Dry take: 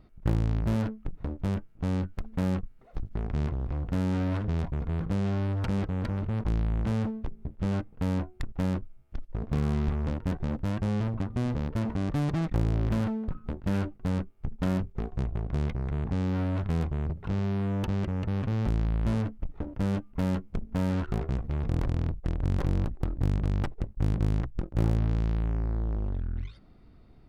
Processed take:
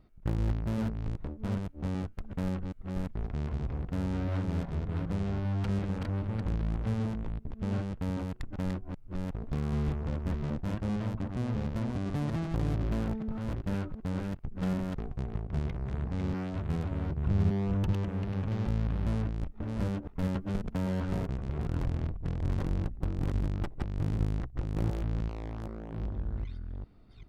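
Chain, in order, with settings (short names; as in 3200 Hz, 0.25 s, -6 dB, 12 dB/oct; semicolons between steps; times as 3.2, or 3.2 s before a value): reverse delay 0.389 s, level -3 dB; 17.17–17.93 low shelf 180 Hz +9 dB; 20.35–21.23 three-band squash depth 70%; gain -5 dB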